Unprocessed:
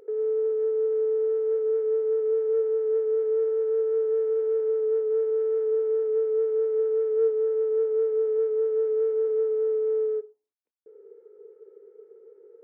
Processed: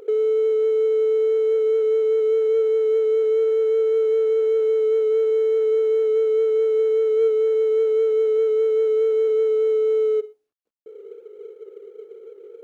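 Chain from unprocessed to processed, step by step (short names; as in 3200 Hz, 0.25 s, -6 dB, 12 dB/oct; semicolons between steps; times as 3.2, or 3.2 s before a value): median filter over 25 samples; in parallel at -2.5 dB: negative-ratio compressor -29 dBFS; on the sum: notch 940 Hz, Q 8.5; gain +2.5 dB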